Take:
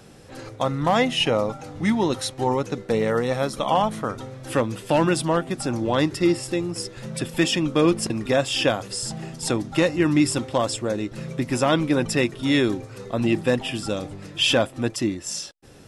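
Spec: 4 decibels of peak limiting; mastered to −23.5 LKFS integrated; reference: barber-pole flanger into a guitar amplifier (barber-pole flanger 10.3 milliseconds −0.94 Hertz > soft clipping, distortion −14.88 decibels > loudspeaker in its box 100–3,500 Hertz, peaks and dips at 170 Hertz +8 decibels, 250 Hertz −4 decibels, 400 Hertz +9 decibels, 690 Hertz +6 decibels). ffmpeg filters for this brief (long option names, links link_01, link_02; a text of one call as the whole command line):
ffmpeg -i in.wav -filter_complex "[0:a]alimiter=limit=-13dB:level=0:latency=1,asplit=2[link_01][link_02];[link_02]adelay=10.3,afreqshift=-0.94[link_03];[link_01][link_03]amix=inputs=2:normalize=1,asoftclip=threshold=-21dB,highpass=100,equalizer=frequency=170:width_type=q:width=4:gain=8,equalizer=frequency=250:width_type=q:width=4:gain=-4,equalizer=frequency=400:width_type=q:width=4:gain=9,equalizer=frequency=690:width_type=q:width=4:gain=6,lowpass=frequency=3500:width=0.5412,lowpass=frequency=3500:width=1.3066,volume=4.5dB" out.wav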